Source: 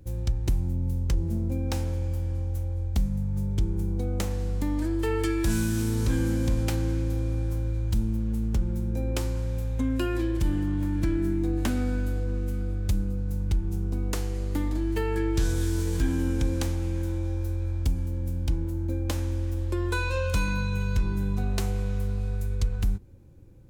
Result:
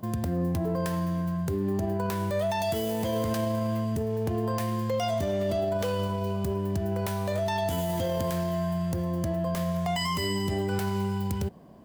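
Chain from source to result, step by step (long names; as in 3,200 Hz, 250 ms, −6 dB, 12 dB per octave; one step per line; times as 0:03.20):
high-pass filter 120 Hz 6 dB per octave
brickwall limiter −25 dBFS, peak gain reduction 9 dB
wrong playback speed 7.5 ips tape played at 15 ips
level +4.5 dB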